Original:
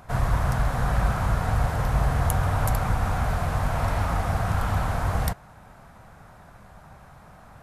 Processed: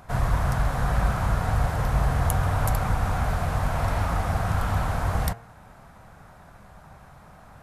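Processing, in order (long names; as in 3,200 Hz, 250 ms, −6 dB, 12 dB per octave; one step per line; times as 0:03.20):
hum removal 115.5 Hz, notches 26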